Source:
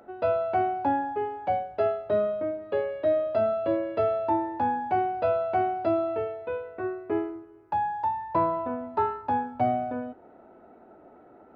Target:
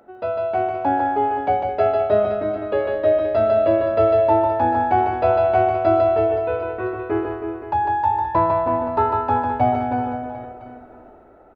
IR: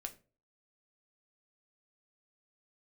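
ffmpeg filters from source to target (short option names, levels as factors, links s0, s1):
-af "dynaudnorm=f=220:g=7:m=2.11,aecho=1:1:150|322.5|520.9|749|1011:0.631|0.398|0.251|0.158|0.1,asubboost=boost=5.5:cutoff=72"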